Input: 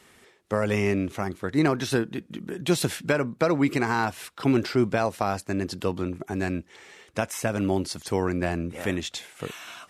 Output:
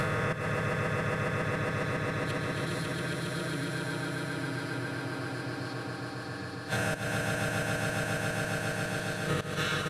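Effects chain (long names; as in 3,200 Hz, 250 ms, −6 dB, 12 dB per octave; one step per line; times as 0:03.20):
peak hold with a rise ahead of every peak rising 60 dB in 1.89 s
low-shelf EQ 220 Hz +7.5 dB
in parallel at −2 dB: output level in coarse steps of 9 dB
on the sum: graphic EQ with 15 bands 100 Hz +9 dB, 1,600 Hz +10 dB, 4,000 Hz +9 dB, 10,000 Hz +4 dB
gate with flip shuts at −11 dBFS, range −32 dB
comb filter 6.4 ms, depth 93%
on a send: echo that builds up and dies away 137 ms, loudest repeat 5, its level −4 dB
on the sum: downward compressor 5 to 1, threshold −28 dBFS, peak gain reduction 10.5 dB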